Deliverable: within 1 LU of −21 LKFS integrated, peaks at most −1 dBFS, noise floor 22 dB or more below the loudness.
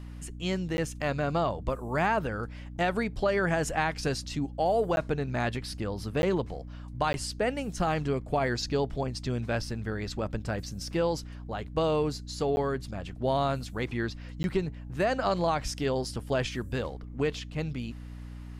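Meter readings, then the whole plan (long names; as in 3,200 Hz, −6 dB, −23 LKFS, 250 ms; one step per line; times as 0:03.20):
number of dropouts 6; longest dropout 11 ms; mains hum 60 Hz; hum harmonics up to 300 Hz; level of the hum −39 dBFS; integrated loudness −30.5 LKFS; sample peak −14.0 dBFS; target loudness −21.0 LKFS
→ repair the gap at 0:00.77/0:04.96/0:06.22/0:07.13/0:12.56/0:14.43, 11 ms
mains-hum notches 60/120/180/240/300 Hz
level +9.5 dB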